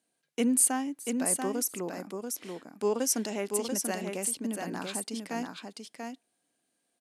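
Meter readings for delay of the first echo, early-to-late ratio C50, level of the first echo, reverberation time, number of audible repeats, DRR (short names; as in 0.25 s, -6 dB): 0.687 s, none, -5.0 dB, none, 1, none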